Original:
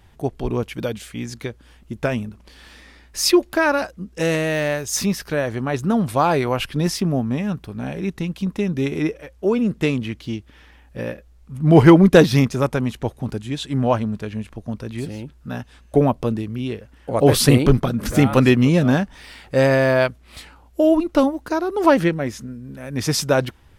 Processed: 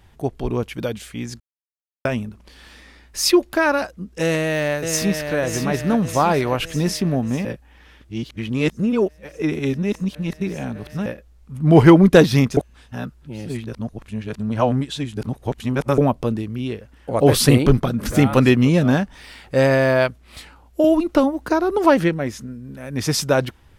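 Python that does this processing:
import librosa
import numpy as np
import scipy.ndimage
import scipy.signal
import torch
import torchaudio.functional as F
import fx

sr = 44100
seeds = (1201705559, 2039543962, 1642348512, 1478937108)

y = fx.echo_throw(x, sr, start_s=4.22, length_s=1.13, ms=600, feedback_pct=60, wet_db=-6.5)
y = fx.band_squash(y, sr, depth_pct=70, at=(20.84, 21.78))
y = fx.edit(y, sr, fx.silence(start_s=1.4, length_s=0.65),
    fx.reverse_span(start_s=7.45, length_s=3.61),
    fx.reverse_span(start_s=12.57, length_s=3.41), tone=tone)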